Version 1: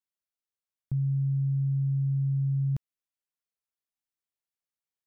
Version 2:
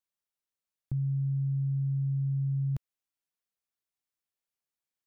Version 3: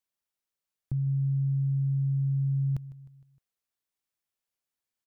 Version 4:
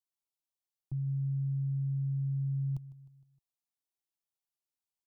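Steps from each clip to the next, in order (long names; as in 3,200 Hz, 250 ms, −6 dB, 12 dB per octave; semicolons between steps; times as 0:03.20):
dynamic equaliser 220 Hz, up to −5 dB, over −43 dBFS, Q 0.97
repeating echo 154 ms, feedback 51%, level −18 dB; level +1.5 dB
phaser with its sweep stopped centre 330 Hz, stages 8; level −5.5 dB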